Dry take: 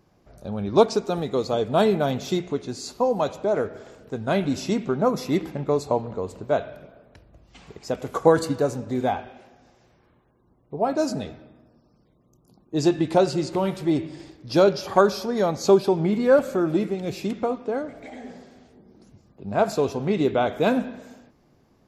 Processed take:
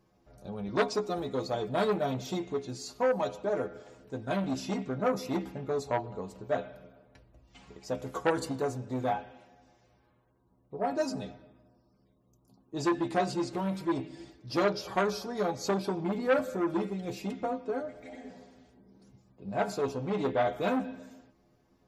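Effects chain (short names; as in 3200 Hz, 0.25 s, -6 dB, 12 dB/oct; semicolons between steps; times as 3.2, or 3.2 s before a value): metallic resonator 62 Hz, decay 0.25 s, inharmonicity 0.008; core saturation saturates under 1400 Hz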